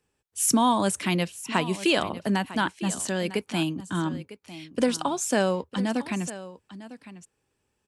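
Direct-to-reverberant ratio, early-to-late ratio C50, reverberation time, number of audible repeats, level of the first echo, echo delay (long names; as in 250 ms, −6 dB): no reverb audible, no reverb audible, no reverb audible, 1, −15.5 dB, 952 ms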